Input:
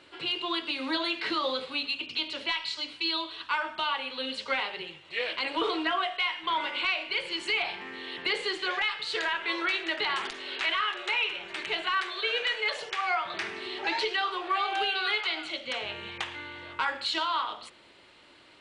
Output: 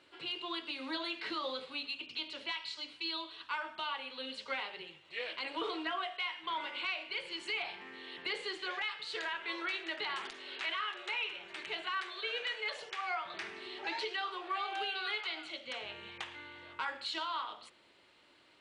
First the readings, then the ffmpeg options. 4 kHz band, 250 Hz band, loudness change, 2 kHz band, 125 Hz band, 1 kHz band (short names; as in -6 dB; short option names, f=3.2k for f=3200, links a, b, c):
-8.5 dB, -9.0 dB, -8.5 dB, -8.5 dB, n/a, -8.5 dB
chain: -af "lowshelf=f=83:g=-5.5,volume=-8.5dB"